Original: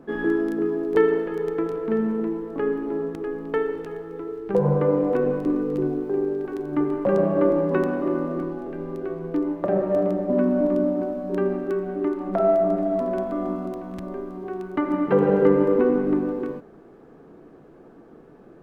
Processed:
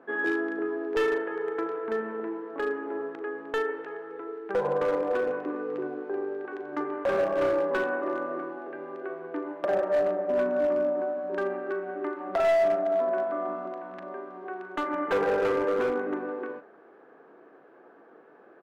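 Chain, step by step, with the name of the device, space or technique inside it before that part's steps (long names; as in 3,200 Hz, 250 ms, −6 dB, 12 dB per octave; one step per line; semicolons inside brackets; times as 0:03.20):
megaphone (band-pass filter 520–2,600 Hz; parametric band 1,600 Hz +5.5 dB 0.35 octaves; hard clipping −21 dBFS, distortion −14 dB; double-tracking delay 39 ms −13 dB)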